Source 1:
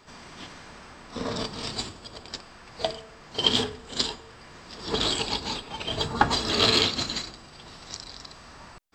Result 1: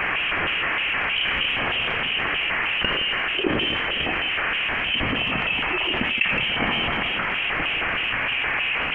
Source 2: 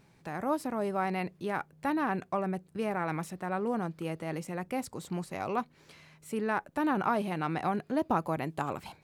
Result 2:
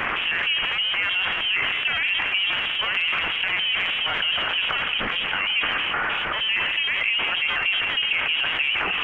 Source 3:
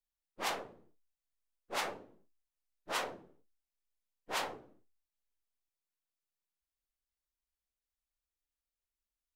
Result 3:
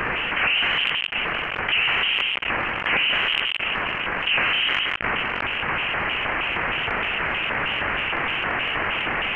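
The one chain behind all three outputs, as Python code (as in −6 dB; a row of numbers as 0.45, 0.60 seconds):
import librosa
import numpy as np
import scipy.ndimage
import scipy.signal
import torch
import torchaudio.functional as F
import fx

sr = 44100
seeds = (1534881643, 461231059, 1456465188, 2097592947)

y = x + 0.5 * 10.0 ** (-27.0 / 20.0) * np.sign(x)
y = fx.highpass(y, sr, hz=440.0, slope=6)
y = fx.rider(y, sr, range_db=3, speed_s=0.5)
y = fx.filter_lfo_bandpass(y, sr, shape='square', hz=3.2, low_hz=740.0, high_hz=1800.0, q=1.2)
y = fx.echo_multitap(y, sr, ms=(81, 168), db=(-19.5, -12.5))
y = fx.freq_invert(y, sr, carrier_hz=3500)
y = fx.transient(y, sr, attack_db=4, sustain_db=8)
y = fx.env_flatten(y, sr, amount_pct=70)
y = y * 10.0 ** (-24 / 20.0) / np.sqrt(np.mean(np.square(y)))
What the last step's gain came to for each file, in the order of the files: −2.5, +3.5, +12.5 decibels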